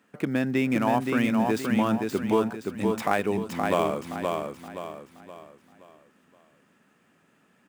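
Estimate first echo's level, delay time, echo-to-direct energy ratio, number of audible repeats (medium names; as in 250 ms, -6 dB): -4.0 dB, 522 ms, -3.5 dB, 4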